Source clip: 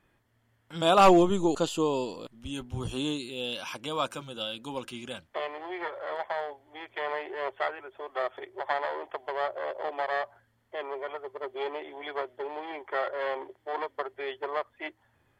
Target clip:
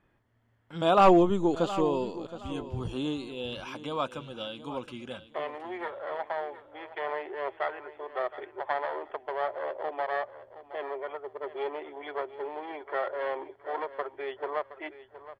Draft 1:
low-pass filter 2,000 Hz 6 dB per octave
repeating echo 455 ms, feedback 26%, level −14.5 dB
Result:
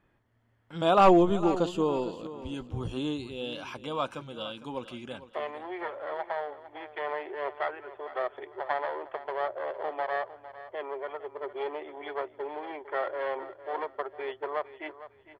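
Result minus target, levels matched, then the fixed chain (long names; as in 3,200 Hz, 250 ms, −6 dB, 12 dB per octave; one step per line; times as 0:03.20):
echo 264 ms early
low-pass filter 2,000 Hz 6 dB per octave
repeating echo 719 ms, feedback 26%, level −14.5 dB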